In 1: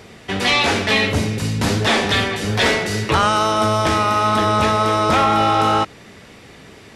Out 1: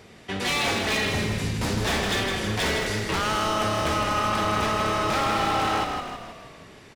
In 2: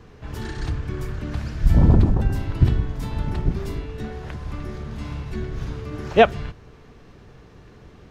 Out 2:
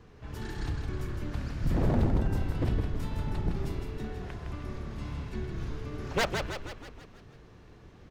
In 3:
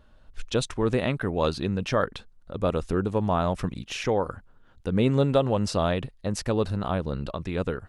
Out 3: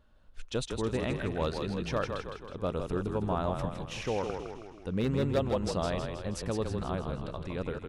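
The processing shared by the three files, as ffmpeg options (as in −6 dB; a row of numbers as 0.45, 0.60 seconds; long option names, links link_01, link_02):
-filter_complex "[0:a]aeval=exprs='0.224*(abs(mod(val(0)/0.224+3,4)-2)-1)':channel_layout=same,asplit=8[link_01][link_02][link_03][link_04][link_05][link_06][link_07][link_08];[link_02]adelay=160,afreqshift=-33,volume=-5.5dB[link_09];[link_03]adelay=320,afreqshift=-66,volume=-10.7dB[link_10];[link_04]adelay=480,afreqshift=-99,volume=-15.9dB[link_11];[link_05]adelay=640,afreqshift=-132,volume=-21.1dB[link_12];[link_06]adelay=800,afreqshift=-165,volume=-26.3dB[link_13];[link_07]adelay=960,afreqshift=-198,volume=-31.5dB[link_14];[link_08]adelay=1120,afreqshift=-231,volume=-36.7dB[link_15];[link_01][link_09][link_10][link_11][link_12][link_13][link_14][link_15]amix=inputs=8:normalize=0,volume=-7.5dB"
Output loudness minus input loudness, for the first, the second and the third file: −7.5, −10.0, −6.5 LU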